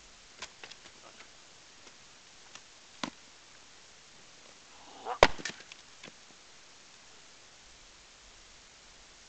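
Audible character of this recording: tremolo saw down 1.7 Hz, depth 60%; a quantiser's noise floor 10-bit, dither triangular; G.722

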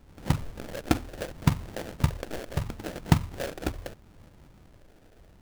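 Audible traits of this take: phasing stages 4, 0.75 Hz, lowest notch 150–1400 Hz; aliases and images of a low sample rate 1100 Hz, jitter 20%

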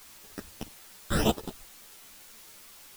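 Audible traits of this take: aliases and images of a low sample rate 2200 Hz, jitter 0%; phasing stages 8, 1.6 Hz, lowest notch 800–2300 Hz; a quantiser's noise floor 10-bit, dither triangular; a shimmering, thickened sound

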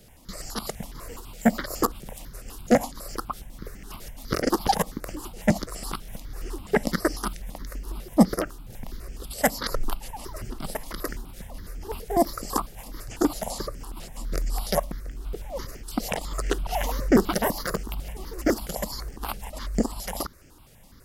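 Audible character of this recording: notches that jump at a steady rate 12 Hz 280–3800 Hz

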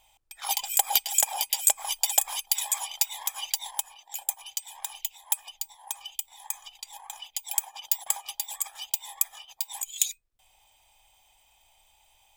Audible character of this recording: noise floor -64 dBFS; spectral tilt +3.5 dB/oct

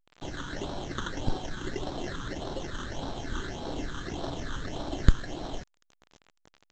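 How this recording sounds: aliases and images of a low sample rate 2400 Hz, jitter 0%; phasing stages 8, 1.7 Hz, lowest notch 670–2200 Hz; a quantiser's noise floor 8-bit, dither none; A-law

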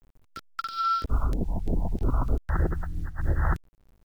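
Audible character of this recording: phasing stages 2, 3.1 Hz, lowest notch 370–1100 Hz; a quantiser's noise floor 10-bit, dither none; noise-modulated level

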